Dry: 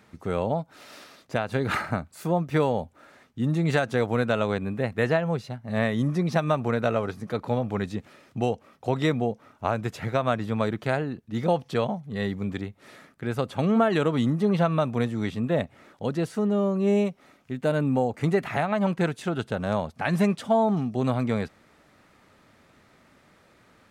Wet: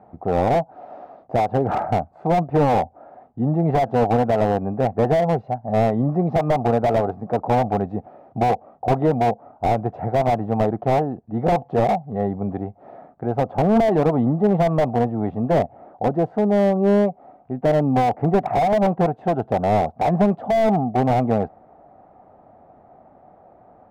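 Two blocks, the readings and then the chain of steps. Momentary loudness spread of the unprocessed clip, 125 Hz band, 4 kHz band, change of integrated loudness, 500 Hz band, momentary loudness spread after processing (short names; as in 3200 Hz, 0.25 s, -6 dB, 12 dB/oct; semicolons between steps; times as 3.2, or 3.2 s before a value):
9 LU, +4.5 dB, -2.0 dB, +5.5 dB, +6.5 dB, 8 LU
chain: synth low-pass 740 Hz, resonance Q 8.3; slew limiter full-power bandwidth 72 Hz; gain +3.5 dB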